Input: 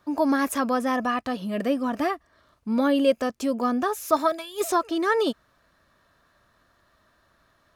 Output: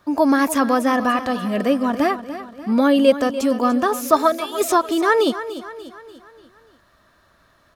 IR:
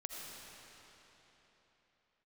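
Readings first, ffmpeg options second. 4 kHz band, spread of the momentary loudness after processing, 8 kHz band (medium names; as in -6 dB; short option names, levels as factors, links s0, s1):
+6.5 dB, 12 LU, +6.5 dB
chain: -af "aecho=1:1:293|586|879|1172|1465:0.224|0.11|0.0538|0.0263|0.0129,volume=2"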